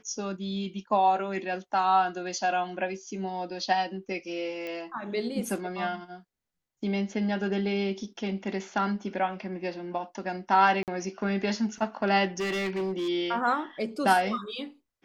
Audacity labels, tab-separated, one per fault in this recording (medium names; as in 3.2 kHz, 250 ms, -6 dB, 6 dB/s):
4.670000	4.670000	pop -24 dBFS
10.830000	10.880000	dropout 48 ms
12.380000	13.090000	clipped -26.5 dBFS